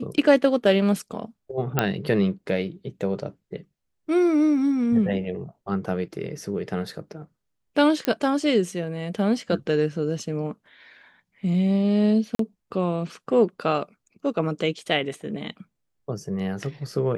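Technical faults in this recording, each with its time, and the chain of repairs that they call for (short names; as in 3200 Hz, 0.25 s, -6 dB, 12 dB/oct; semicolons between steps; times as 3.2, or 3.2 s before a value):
1.79 pop -5 dBFS
8.05 pop -9 dBFS
12.35–12.39 gap 43 ms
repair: de-click; interpolate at 12.35, 43 ms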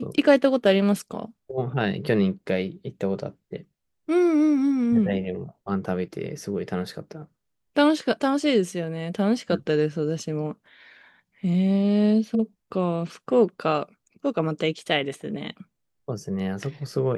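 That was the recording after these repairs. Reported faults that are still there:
none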